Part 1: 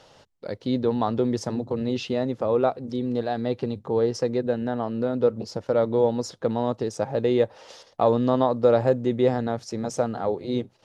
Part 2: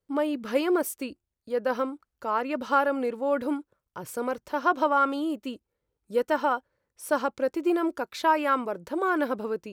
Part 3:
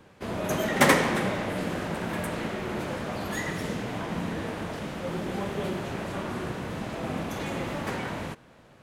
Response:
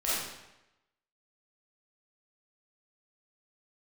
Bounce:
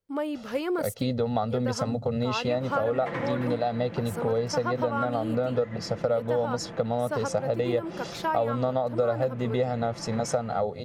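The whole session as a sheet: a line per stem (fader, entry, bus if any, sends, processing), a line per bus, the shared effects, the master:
+1.5 dB, 0.35 s, no send, comb filter 1.5 ms, depth 84%
−3.0 dB, 0.00 s, no send, no processing
−9.0 dB, 2.25 s, no send, low-pass filter 2,400 Hz 12 dB per octave; comb filter 5.9 ms, depth 59%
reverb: not used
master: downward compressor 5 to 1, threshold −23 dBFS, peak gain reduction 12.5 dB

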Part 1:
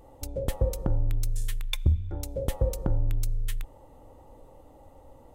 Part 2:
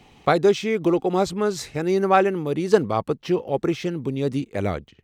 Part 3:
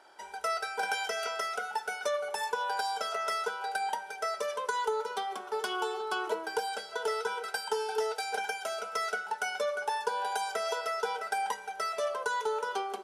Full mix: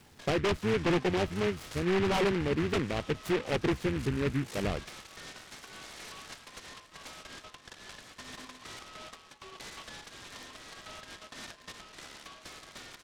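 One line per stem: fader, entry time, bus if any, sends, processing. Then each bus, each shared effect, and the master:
−10.0 dB, 1.10 s, muted 0:01.85–0:03.46, bus A, no send, downward compressor, threshold −31 dBFS, peak gain reduction 13.5 dB
−4.5 dB, 0.00 s, no bus, no send, sub-octave generator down 1 octave, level −4 dB; rotating-speaker cabinet horn 0.75 Hz; wave folding −16.5 dBFS
−5.0 dB, 0.00 s, bus A, no send, downward compressor 5 to 1, threshold −35 dBFS, peak gain reduction 9 dB; flanger whose copies keep moving one way falling 0.27 Hz
bus A: 0.0 dB, voice inversion scrambler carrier 2,600 Hz; brickwall limiter −37.5 dBFS, peak gain reduction 11.5 dB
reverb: not used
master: treble cut that deepens with the level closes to 1,200 Hz, closed at −26.5 dBFS; high-shelf EQ 5,100 Hz +9.5 dB; short delay modulated by noise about 1,700 Hz, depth 0.13 ms

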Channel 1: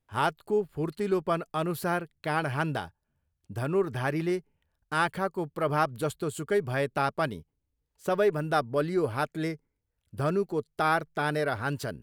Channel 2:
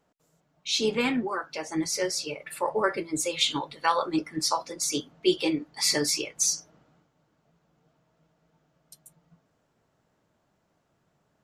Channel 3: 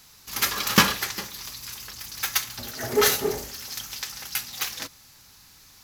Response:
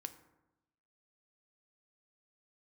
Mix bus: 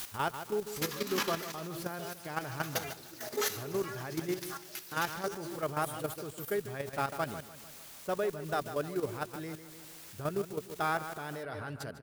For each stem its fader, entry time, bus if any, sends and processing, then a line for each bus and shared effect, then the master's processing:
−4.5 dB, 0.00 s, no send, echo send −10 dB, no processing
−1.0 dB, 0.00 s, no send, no echo send, partials spread apart or drawn together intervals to 124%; bit-depth reduction 6 bits, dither triangular; automatic ducking −11 dB, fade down 0.20 s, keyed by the first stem
−10.5 dB, 0.40 s, no send, echo send −13.5 dB, high-pass filter 220 Hz 12 dB per octave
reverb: not used
echo: repeating echo 150 ms, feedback 49%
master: output level in coarse steps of 10 dB

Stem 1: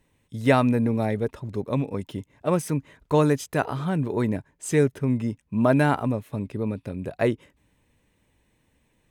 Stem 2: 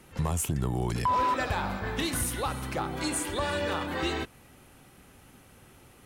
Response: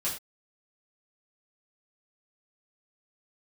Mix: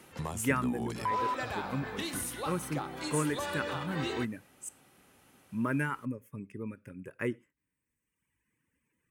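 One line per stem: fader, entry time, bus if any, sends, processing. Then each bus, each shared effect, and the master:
−5.0 dB, 0.00 s, muted 0:04.69–0:05.37, send −23 dB, reverb reduction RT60 1.3 s; phaser with its sweep stopped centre 1,700 Hz, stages 4
+1.5 dB, 0.00 s, no send, automatic ducking −7 dB, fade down 0.30 s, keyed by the first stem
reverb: on, pre-delay 3 ms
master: high-pass filter 220 Hz 6 dB per octave

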